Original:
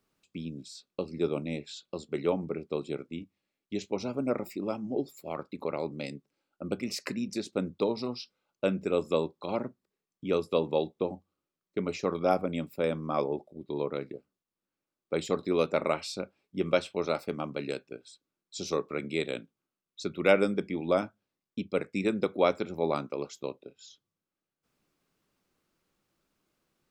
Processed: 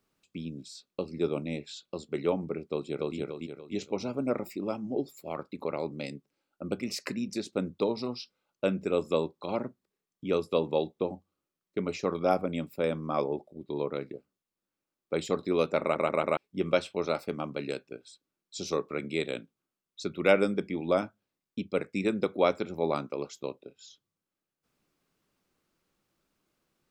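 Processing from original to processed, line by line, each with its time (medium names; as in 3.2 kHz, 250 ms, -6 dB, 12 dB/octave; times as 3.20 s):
2.68–3.17 s: echo throw 290 ms, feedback 40%, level -0.5 dB
15.81 s: stutter in place 0.14 s, 4 plays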